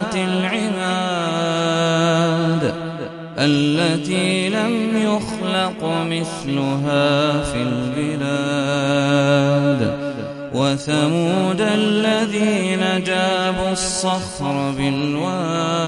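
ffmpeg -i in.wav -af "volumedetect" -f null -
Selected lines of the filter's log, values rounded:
mean_volume: -18.8 dB
max_volume: -2.2 dB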